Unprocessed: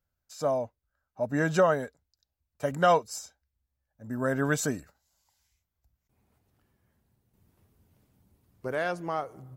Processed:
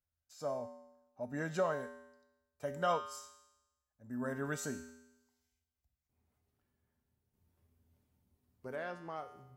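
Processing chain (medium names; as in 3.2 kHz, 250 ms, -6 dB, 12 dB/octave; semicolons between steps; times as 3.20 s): 8.75–9.15 s: treble shelf 4.5 kHz -> 8.4 kHz -11.5 dB; feedback comb 82 Hz, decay 0.95 s, harmonics odd, mix 80%; trim +1 dB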